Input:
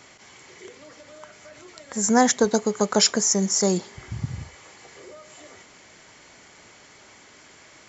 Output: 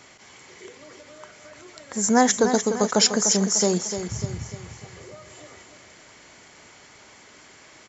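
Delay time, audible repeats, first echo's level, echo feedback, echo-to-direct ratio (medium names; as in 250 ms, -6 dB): 298 ms, 4, -9.0 dB, 46%, -8.0 dB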